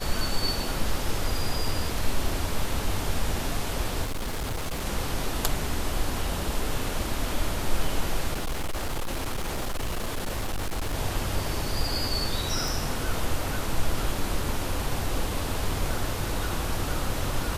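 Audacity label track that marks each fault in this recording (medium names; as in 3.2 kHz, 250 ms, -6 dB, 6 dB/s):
4.030000	4.860000	clipped -26.5 dBFS
8.330000	10.950000	clipped -25 dBFS
12.680000	12.680000	pop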